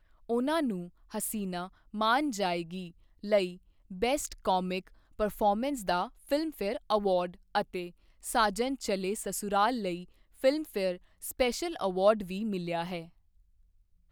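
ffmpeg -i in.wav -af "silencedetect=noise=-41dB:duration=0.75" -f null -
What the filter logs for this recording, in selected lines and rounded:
silence_start: 13.05
silence_end: 14.12 | silence_duration: 1.07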